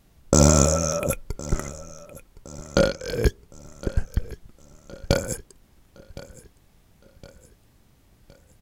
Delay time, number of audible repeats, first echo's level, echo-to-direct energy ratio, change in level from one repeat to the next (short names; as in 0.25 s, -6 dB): 1.064 s, 3, -18.5 dB, -17.5 dB, -6.5 dB